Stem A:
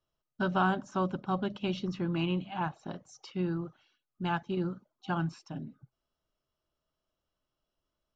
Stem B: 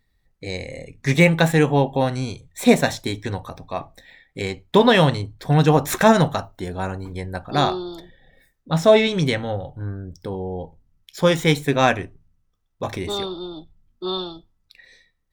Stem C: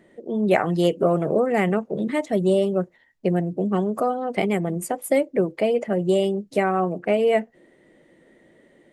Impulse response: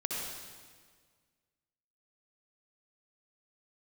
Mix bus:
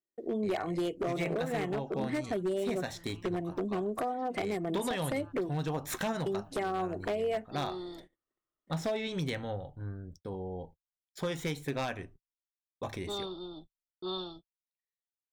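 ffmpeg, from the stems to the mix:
-filter_complex "[0:a]equalizer=f=1.2k:t=o:w=0.77:g=12,acompressor=threshold=-32dB:ratio=4,adelay=950,volume=-15dB[a];[1:a]volume=-10.5dB[b];[2:a]aecho=1:1:2.8:0.39,volume=-3dB,asplit=3[c][d][e];[c]atrim=end=5.54,asetpts=PTS-STARTPTS,afade=t=out:st=5.536:d=0.004:c=hsin[f];[d]atrim=start=5.54:end=6.26,asetpts=PTS-STARTPTS,volume=0[g];[e]atrim=start=6.26,asetpts=PTS-STARTPTS,afade=t=in:d=0.004:c=hsin[h];[f][g][h]concat=n=3:v=0:a=1,asplit=2[i][j];[j]apad=whole_len=401391[k];[a][k]sidechaincompress=threshold=-28dB:ratio=8:attack=16:release=1080[l];[b][i]amix=inputs=2:normalize=0,agate=range=-43dB:threshold=-50dB:ratio=16:detection=peak,acompressor=threshold=-29dB:ratio=6,volume=0dB[m];[l][m]amix=inputs=2:normalize=0,aeval=exprs='0.0562*(abs(mod(val(0)/0.0562+3,4)-2)-1)':c=same"

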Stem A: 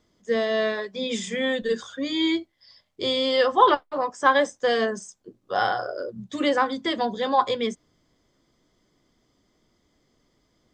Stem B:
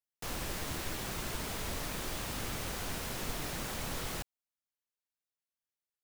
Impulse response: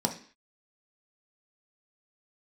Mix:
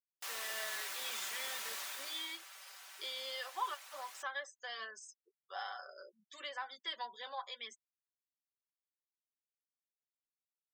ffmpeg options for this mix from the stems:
-filter_complex "[0:a]acompressor=threshold=-24dB:ratio=2.5,flanger=delay=0.2:depth=1.9:regen=73:speed=0.49:shape=sinusoidal,volume=-7.5dB[a];[1:a]volume=-2dB,afade=t=out:st=1.76:d=0.62:silence=0.298538[b];[a][b]amix=inputs=2:normalize=0,highpass=1.1k,afftfilt=real='re*gte(hypot(re,im),0.001)':imag='im*gte(hypot(re,im),0.001)':win_size=1024:overlap=0.75,aecho=1:1:5.2:0.49"

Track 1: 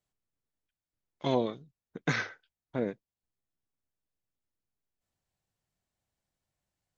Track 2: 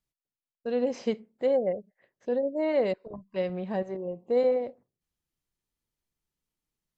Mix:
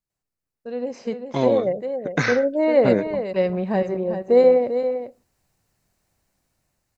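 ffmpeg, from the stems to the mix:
-filter_complex "[0:a]alimiter=limit=-18.5dB:level=0:latency=1:release=230,adelay=100,volume=1.5dB[a];[1:a]volume=-3dB,asplit=2[b][c];[c]volume=-9.5dB,aecho=0:1:395:1[d];[a][b][d]amix=inputs=3:normalize=0,equalizer=f=3.3k:w=4.6:g=-8,dynaudnorm=f=600:g=5:m=14dB"

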